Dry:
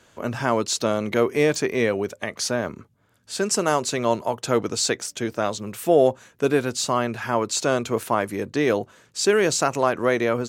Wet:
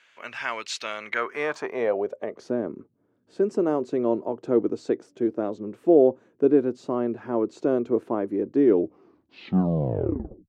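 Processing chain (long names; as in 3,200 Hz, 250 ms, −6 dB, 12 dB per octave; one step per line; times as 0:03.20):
turntable brake at the end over 1.96 s
band-pass filter sweep 2,300 Hz → 330 Hz, 0:00.91–0:02.49
level +5.5 dB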